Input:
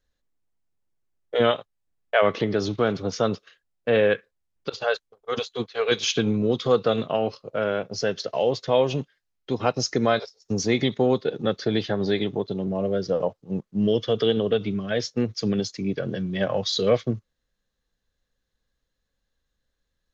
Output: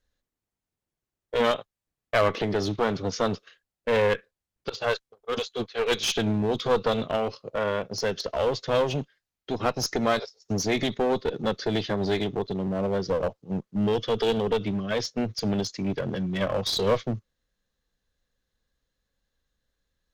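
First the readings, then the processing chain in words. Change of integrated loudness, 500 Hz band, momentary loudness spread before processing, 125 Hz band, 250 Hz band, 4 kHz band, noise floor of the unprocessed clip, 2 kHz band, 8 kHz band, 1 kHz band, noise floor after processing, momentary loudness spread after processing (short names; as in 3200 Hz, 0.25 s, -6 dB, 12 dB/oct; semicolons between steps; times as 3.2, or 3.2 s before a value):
-2.5 dB, -3.0 dB, 8 LU, -2.0 dB, -3.0 dB, -1.5 dB, -79 dBFS, -1.5 dB, n/a, 0.0 dB, under -85 dBFS, 7 LU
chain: one-sided clip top -25 dBFS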